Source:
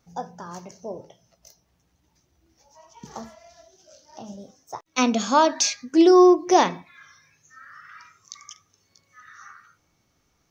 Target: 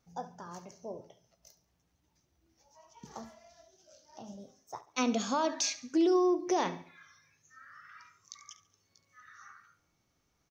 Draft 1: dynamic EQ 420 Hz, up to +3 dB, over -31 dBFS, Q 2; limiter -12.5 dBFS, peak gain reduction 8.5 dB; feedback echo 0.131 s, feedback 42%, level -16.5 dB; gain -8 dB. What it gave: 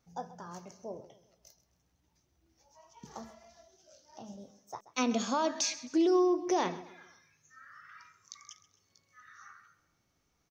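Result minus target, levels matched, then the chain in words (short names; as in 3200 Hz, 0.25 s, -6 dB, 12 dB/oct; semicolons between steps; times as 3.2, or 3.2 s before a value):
echo 61 ms late
dynamic EQ 420 Hz, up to +3 dB, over -31 dBFS, Q 2; limiter -12.5 dBFS, peak gain reduction 8.5 dB; feedback echo 70 ms, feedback 42%, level -16.5 dB; gain -8 dB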